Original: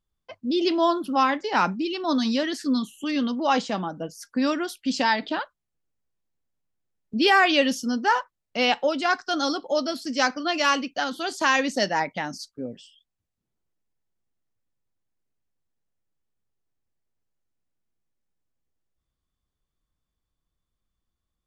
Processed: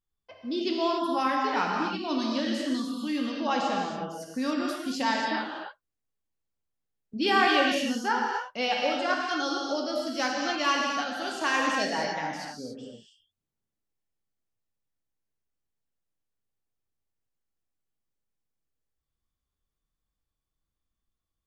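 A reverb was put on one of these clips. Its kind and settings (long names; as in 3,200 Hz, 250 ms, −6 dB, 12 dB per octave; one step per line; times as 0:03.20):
reverb whose tail is shaped and stops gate 310 ms flat, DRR −1.5 dB
level −7.5 dB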